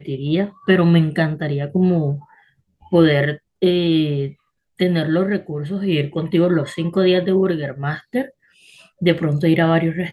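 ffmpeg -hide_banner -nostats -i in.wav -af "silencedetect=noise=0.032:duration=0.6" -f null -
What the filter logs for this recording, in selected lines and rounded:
silence_start: 2.19
silence_end: 2.92 | silence_duration: 0.74
silence_start: 8.26
silence_end: 9.02 | silence_duration: 0.75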